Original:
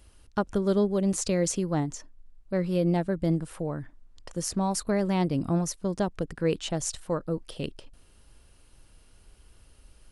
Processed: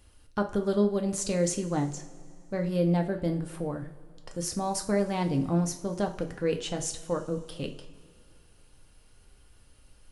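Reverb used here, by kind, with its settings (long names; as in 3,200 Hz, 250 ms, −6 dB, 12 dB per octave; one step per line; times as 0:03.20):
coupled-rooms reverb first 0.35 s, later 2.5 s, from −19 dB, DRR 3.5 dB
level −2.5 dB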